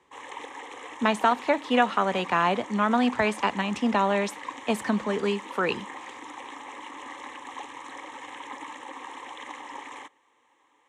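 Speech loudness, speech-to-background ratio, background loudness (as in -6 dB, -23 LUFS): -25.5 LUFS, 14.5 dB, -40.0 LUFS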